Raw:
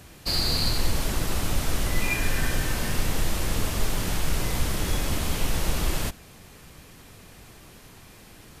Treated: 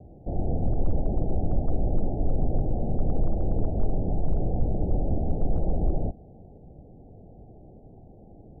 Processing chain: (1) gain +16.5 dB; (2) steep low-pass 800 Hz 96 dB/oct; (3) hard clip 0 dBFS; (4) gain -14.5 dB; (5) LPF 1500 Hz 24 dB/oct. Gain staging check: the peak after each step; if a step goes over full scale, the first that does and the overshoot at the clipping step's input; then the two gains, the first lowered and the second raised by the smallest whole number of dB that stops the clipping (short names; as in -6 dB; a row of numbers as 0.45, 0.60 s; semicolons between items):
+6.5, +5.0, 0.0, -14.5, -14.5 dBFS; step 1, 5.0 dB; step 1 +11.5 dB, step 4 -9.5 dB